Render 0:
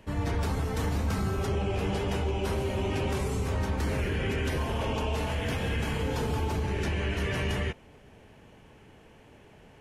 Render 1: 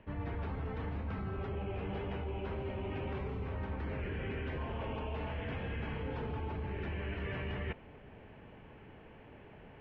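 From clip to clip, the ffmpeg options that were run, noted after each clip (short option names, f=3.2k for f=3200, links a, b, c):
-af "lowpass=f=2.8k:w=0.5412,lowpass=f=2.8k:w=1.3066,areverse,acompressor=threshold=-36dB:ratio=6,areverse"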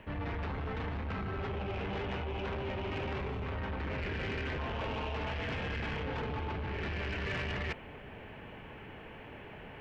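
-af "asoftclip=type=tanh:threshold=-38dB,crystalizer=i=10:c=0,lowpass=f=1.6k:p=1,volume=4.5dB"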